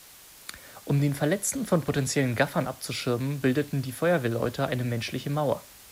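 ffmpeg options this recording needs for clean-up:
-af "afftdn=nr=22:nf=-50"

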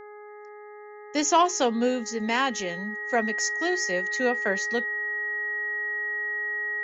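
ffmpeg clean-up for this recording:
-af "bandreject=f=417.5:t=h:w=4,bandreject=f=835:t=h:w=4,bandreject=f=1.2525k:t=h:w=4,bandreject=f=1.67k:t=h:w=4,bandreject=f=2.0875k:t=h:w=4,bandreject=f=1.9k:w=30"

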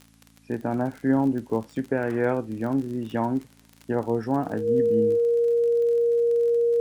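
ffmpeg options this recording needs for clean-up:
-af "adeclick=t=4,bandreject=f=55.5:t=h:w=4,bandreject=f=111:t=h:w=4,bandreject=f=166.5:t=h:w=4,bandreject=f=222:t=h:w=4,bandreject=f=277.5:t=h:w=4,bandreject=f=470:w=30,agate=range=-21dB:threshold=-46dB"

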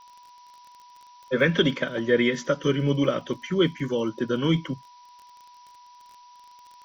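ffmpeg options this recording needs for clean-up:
-af "adeclick=t=4,bandreject=f=980:w=30,afftdn=nr=19:nf=-51"

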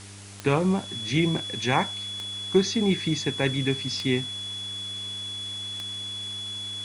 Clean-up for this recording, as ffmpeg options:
-af "adeclick=t=4,bandreject=f=99.9:t=h:w=4,bandreject=f=199.8:t=h:w=4,bandreject=f=299.7:t=h:w=4,bandreject=f=399.6:t=h:w=4,bandreject=f=3.4k:w=30,afwtdn=0.0063"

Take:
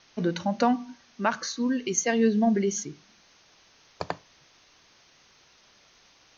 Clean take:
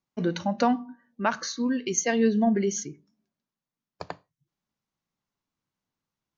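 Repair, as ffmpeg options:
-af "afwtdn=0.002,asetnsamples=n=441:p=0,asendcmd='3.09 volume volume -5dB',volume=0dB"

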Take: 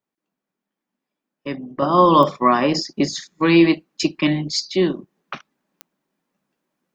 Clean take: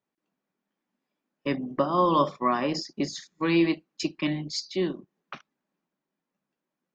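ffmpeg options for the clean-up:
-af "adeclick=t=4,asetnsamples=n=441:p=0,asendcmd='1.82 volume volume -9dB',volume=0dB"

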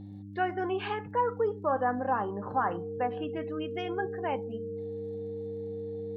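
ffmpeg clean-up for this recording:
-af "adeclick=t=4,bandreject=f=100:t=h:w=4,bandreject=f=200:t=h:w=4,bandreject=f=300:t=h:w=4,bandreject=f=460:w=30"

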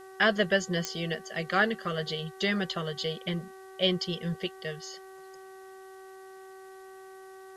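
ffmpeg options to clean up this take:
-af "adeclick=t=4,bandreject=f=381.3:t=h:w=4,bandreject=f=762.6:t=h:w=4,bandreject=f=1.1439k:t=h:w=4,bandreject=f=1.5252k:t=h:w=4,bandreject=f=1.9065k:t=h:w=4,agate=range=-21dB:threshold=-40dB"

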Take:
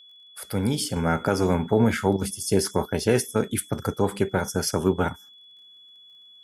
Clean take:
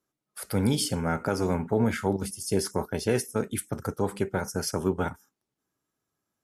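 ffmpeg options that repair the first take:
-af "adeclick=t=4,bandreject=f=3.4k:w=30,asetnsamples=n=441:p=0,asendcmd='0.96 volume volume -4.5dB',volume=0dB"

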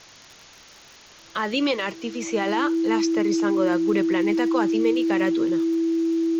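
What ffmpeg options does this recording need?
-af "adeclick=t=4,bandreject=f=330:w=30,afwtdn=0.0063"

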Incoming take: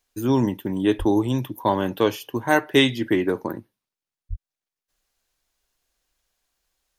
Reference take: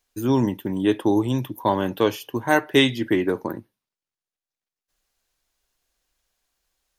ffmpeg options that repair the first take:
-filter_complex "[0:a]asplit=3[a][b][c];[a]afade=t=out:st=0.98:d=0.02[d];[b]highpass=f=140:w=0.5412,highpass=f=140:w=1.3066,afade=t=in:st=0.98:d=0.02,afade=t=out:st=1.1:d=0.02[e];[c]afade=t=in:st=1.1:d=0.02[f];[d][e][f]amix=inputs=3:normalize=0,asplit=3[g][h][i];[g]afade=t=out:st=4.29:d=0.02[j];[h]highpass=f=140:w=0.5412,highpass=f=140:w=1.3066,afade=t=in:st=4.29:d=0.02,afade=t=out:st=4.41:d=0.02[k];[i]afade=t=in:st=4.41:d=0.02[l];[j][k][l]amix=inputs=3:normalize=0"

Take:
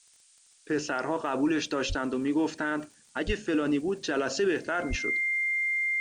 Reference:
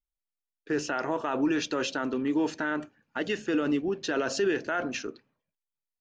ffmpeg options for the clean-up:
-filter_complex "[0:a]adeclick=t=4,bandreject=f=2.1k:w=30,asplit=3[a][b][c];[a]afade=t=out:st=1.88:d=0.02[d];[b]highpass=f=140:w=0.5412,highpass=f=140:w=1.3066,afade=t=in:st=1.88:d=0.02,afade=t=out:st=2:d=0.02[e];[c]afade=t=in:st=2:d=0.02[f];[d][e][f]amix=inputs=3:normalize=0,asplit=3[g][h][i];[g]afade=t=out:st=3.26:d=0.02[j];[h]highpass=f=140:w=0.5412,highpass=f=140:w=1.3066,afade=t=in:st=3.26:d=0.02,afade=t=out:st=3.38:d=0.02[k];[i]afade=t=in:st=3.38:d=0.02[l];[j][k][l]amix=inputs=3:normalize=0,asplit=3[m][n][o];[m]afade=t=out:st=4.89:d=0.02[p];[n]highpass=f=140:w=0.5412,highpass=f=140:w=1.3066,afade=t=in:st=4.89:d=0.02,afade=t=out:st=5.01:d=0.02[q];[o]afade=t=in:st=5.01:d=0.02[r];[p][q][r]amix=inputs=3:normalize=0,afftdn=nr=30:nf=-60"

